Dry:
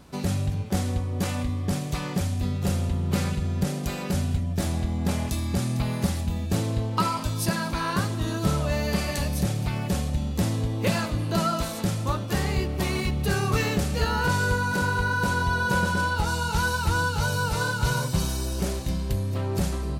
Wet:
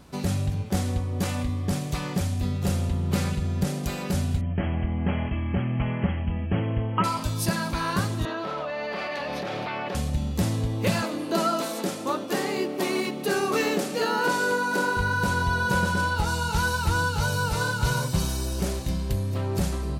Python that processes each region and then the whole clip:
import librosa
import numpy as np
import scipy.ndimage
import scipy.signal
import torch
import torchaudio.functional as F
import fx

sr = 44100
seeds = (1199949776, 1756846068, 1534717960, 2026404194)

y = fx.chain(x, sr, fx.brickwall_lowpass(high_hz=3300.0),
    fx.peak_eq(hz=2000.0, db=3.5, octaves=0.53), at=(4.41, 7.04))
y = fx.chain(y, sr, fx.highpass(hz=520.0, slope=12),
    fx.air_absorb(metres=320.0),
    fx.env_flatten(amount_pct=100), at=(8.25, 9.95))
y = fx.chain(y, sr, fx.highpass(hz=270.0, slope=24),
    fx.low_shelf(hz=480.0, db=8.5), at=(11.02, 14.97))